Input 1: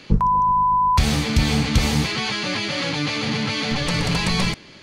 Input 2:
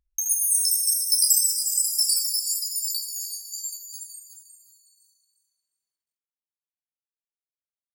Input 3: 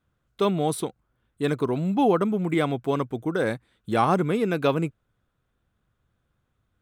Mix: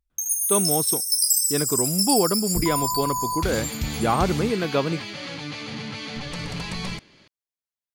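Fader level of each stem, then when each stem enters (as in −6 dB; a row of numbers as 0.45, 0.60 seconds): −10.0, −1.0, −0.5 decibels; 2.45, 0.00, 0.10 seconds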